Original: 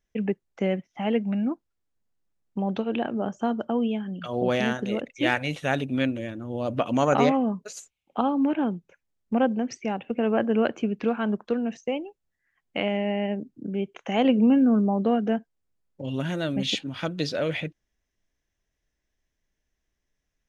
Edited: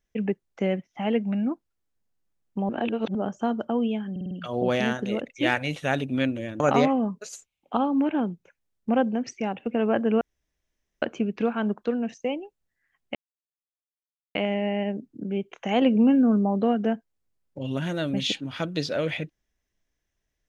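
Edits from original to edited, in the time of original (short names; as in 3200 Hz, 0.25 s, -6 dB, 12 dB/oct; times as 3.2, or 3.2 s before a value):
2.69–3.15 reverse
4.11 stutter 0.05 s, 5 plays
6.4–7.04 cut
10.65 insert room tone 0.81 s
12.78 insert silence 1.20 s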